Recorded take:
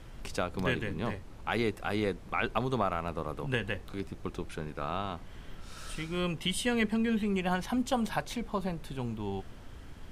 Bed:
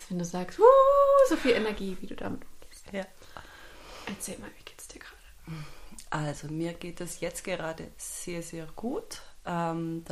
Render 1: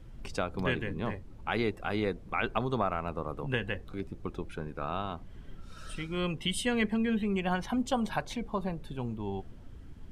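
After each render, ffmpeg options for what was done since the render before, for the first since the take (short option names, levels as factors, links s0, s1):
-af "afftdn=nr=10:nf=-48"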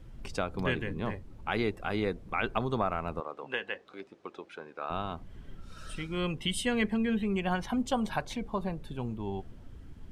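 -filter_complex "[0:a]asettb=1/sr,asplit=3[s0][s1][s2];[s0]atrim=end=3.204[s3];[s1]atrim=start=3.2:end=4.9,asetpts=PTS-STARTPTS,afade=t=in:d=0.004:c=qsin,afade=t=out:st=1.696:d=0.004:c=qsin,highpass=460,lowpass=6000[s4];[s2]atrim=start=4.896[s5];[s3][s4]acrossfade=d=0.004:c1=hsin:c2=qsin[s6];[s6][s5]acrossfade=d=0.004:c1=qsin:c2=hsin"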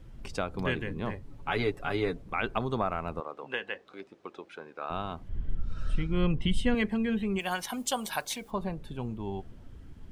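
-filter_complex "[0:a]asettb=1/sr,asplit=3[s0][s1][s2];[s0]atrim=end=1.224[s3];[s1]atrim=start=1.22:end=2.22,asetpts=PTS-STARTPTS,afade=t=in:d=0.004:c=qsin,afade=t=out:st=0.996:d=0.004:c=qsin,aecho=1:1:7.1:0.65,atrim=end_sample=44100[s4];[s2]atrim=start=2.216[s5];[s3][s4]acrossfade=d=0.004:c1=hsin:c2=qsin[s6];[s6][s5]acrossfade=d=0.004:c1=qsin:c2=hsin,asettb=1/sr,asplit=3[s7][s8][s9];[s7]atrim=end=5.294[s10];[s8]atrim=start=5.29:end=6.75,asetpts=PTS-STARTPTS,afade=t=in:d=0.004:c=qsin,afade=t=out:st=1.456:d=0.004:c=qsin,aemphasis=mode=reproduction:type=bsi[s11];[s9]atrim=start=6.746[s12];[s10][s11]acrossfade=d=0.004:c1=hsin:c2=qsin[s13];[s13][s12]acrossfade=d=0.004:c1=qsin:c2=hsin,asplit=3[s14][s15][s16];[s14]afade=t=out:st=7.38:d=0.02[s17];[s15]aemphasis=mode=production:type=riaa,afade=t=in:st=7.38:d=0.02,afade=t=out:st=8.5:d=0.02[s18];[s16]afade=t=in:st=8.5:d=0.02[s19];[s17][s18][s19]amix=inputs=3:normalize=0"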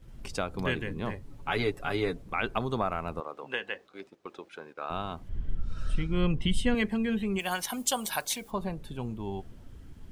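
-af "highshelf=f=5600:g=7.5,agate=range=0.447:threshold=0.00355:ratio=16:detection=peak"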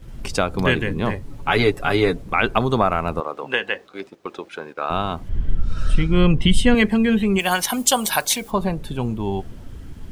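-af "volume=3.76,alimiter=limit=0.708:level=0:latency=1"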